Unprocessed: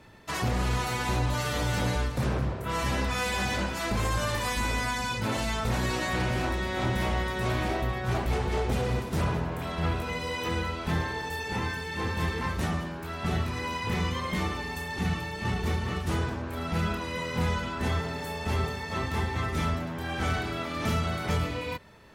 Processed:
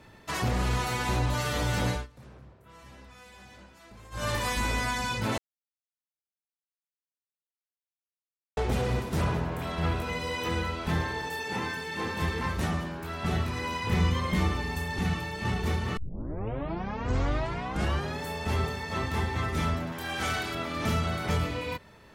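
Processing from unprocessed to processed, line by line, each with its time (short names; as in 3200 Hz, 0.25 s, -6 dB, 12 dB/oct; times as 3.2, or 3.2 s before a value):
1.9–4.28 dip -22 dB, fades 0.17 s
5.38–8.57 mute
11.27–12.22 HPF 150 Hz
13.92–15 low shelf 180 Hz +7.5 dB
15.97 tape start 2.26 s
19.92–20.55 tilt +2 dB/oct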